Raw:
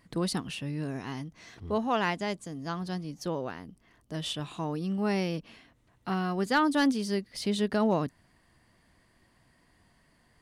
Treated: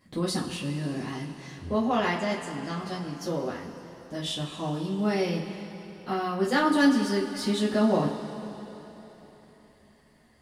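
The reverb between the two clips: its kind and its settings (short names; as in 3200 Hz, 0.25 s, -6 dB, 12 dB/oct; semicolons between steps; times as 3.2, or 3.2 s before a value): two-slope reverb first 0.25 s, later 3.7 s, from -18 dB, DRR -6.5 dB; gain -5 dB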